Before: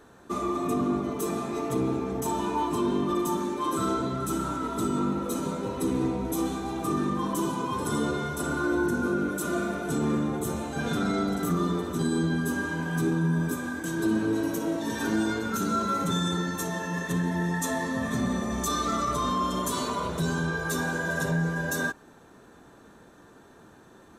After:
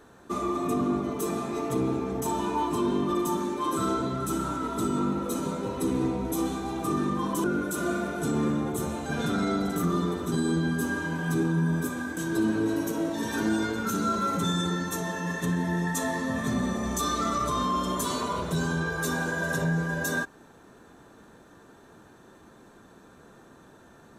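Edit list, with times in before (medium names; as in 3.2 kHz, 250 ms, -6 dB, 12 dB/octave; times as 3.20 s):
7.44–9.11 s: delete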